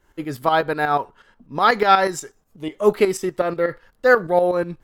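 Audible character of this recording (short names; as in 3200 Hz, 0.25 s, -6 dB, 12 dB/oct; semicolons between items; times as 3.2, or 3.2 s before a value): tremolo saw up 8.2 Hz, depth 65%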